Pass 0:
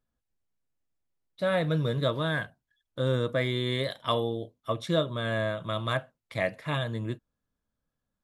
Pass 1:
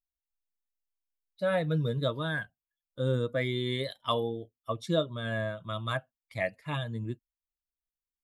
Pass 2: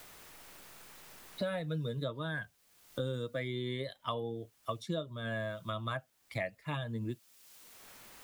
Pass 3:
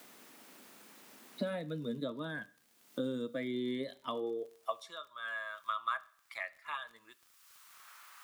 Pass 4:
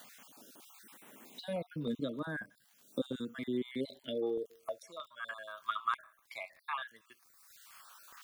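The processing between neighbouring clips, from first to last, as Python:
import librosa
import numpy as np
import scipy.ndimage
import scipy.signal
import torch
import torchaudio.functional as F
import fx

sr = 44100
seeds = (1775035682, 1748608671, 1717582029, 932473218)

y1 = fx.bin_expand(x, sr, power=1.5)
y2 = fx.quant_dither(y1, sr, seeds[0], bits=12, dither='triangular')
y2 = fx.band_squash(y2, sr, depth_pct=100)
y2 = y2 * 10.0 ** (-6.5 / 20.0)
y3 = fx.filter_sweep_highpass(y2, sr, from_hz=240.0, to_hz=1200.0, start_s=4.06, end_s=4.96, q=3.2)
y3 = fx.dmg_crackle(y3, sr, seeds[1], per_s=34.0, level_db=-45.0)
y3 = fx.rev_schroeder(y3, sr, rt60_s=0.54, comb_ms=27, drr_db=18.5)
y3 = y3 * 10.0 ** (-3.5 / 20.0)
y4 = fx.spec_dropout(y3, sr, seeds[2], share_pct=32)
y4 = fx.filter_held_notch(y4, sr, hz=3.2, low_hz=360.0, high_hz=7300.0)
y4 = y4 * 10.0 ** (3.0 / 20.0)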